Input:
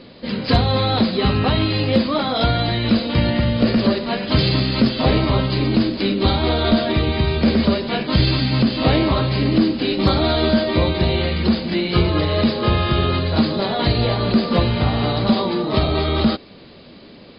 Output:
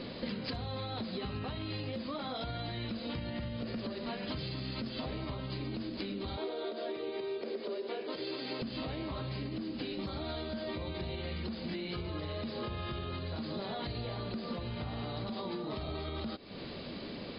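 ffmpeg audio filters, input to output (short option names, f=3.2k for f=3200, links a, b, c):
-filter_complex "[0:a]alimiter=limit=-14dB:level=0:latency=1:release=190,asettb=1/sr,asplit=3[a][b][c];[a]atrim=end=6.374[d];[b]atrim=start=6.37:end=8.62,asetpts=PTS-STARTPTS,afade=t=in:d=0.004:c=qsin,afade=t=out:st=2.246:d=0.004:c=qsin,highpass=f=410:t=q:w=4.4[e];[c]atrim=start=8.616[f];[d][e]acrossfade=d=0.004:c1=hsin:c2=qsin[g];[g][f]acrossfade=d=0.004:c1=qsin:c2=hsin,acompressor=threshold=-35dB:ratio=16"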